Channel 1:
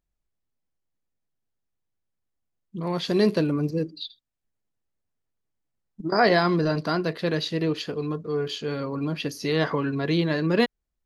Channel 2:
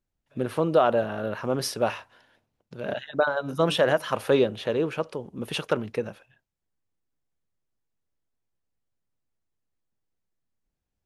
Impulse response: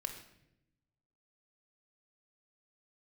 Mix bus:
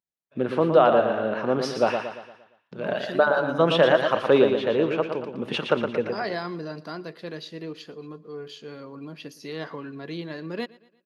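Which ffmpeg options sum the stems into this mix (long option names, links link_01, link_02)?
-filter_complex "[0:a]volume=-10dB,asplit=2[link_01][link_02];[link_02]volume=-22dB[link_03];[1:a]agate=range=-33dB:threshold=-58dB:ratio=3:detection=peak,lowpass=3800,volume=3dB,asplit=3[link_04][link_05][link_06];[link_05]volume=-6.5dB[link_07];[link_06]apad=whole_len=487491[link_08];[link_01][link_08]sidechaincompress=threshold=-24dB:ratio=8:attack=16:release=160[link_09];[link_03][link_07]amix=inputs=2:normalize=0,aecho=0:1:116|232|348|464|580|696:1|0.45|0.202|0.0911|0.041|0.0185[link_10];[link_09][link_04][link_10]amix=inputs=3:normalize=0,highpass=160"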